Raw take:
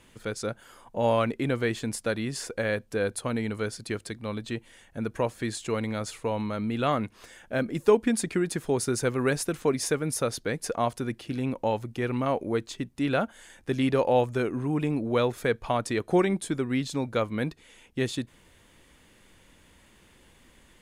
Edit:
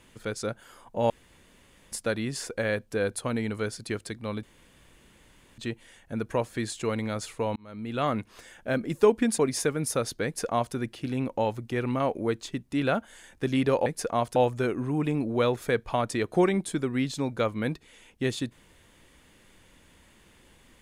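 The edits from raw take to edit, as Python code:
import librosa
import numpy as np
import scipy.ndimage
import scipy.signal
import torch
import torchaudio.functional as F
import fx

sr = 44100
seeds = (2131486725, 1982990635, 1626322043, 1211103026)

y = fx.edit(x, sr, fx.room_tone_fill(start_s=1.1, length_s=0.82),
    fx.insert_room_tone(at_s=4.43, length_s=1.15),
    fx.fade_in_span(start_s=6.41, length_s=0.58),
    fx.cut(start_s=8.23, length_s=1.41),
    fx.duplicate(start_s=10.51, length_s=0.5, to_s=14.12), tone=tone)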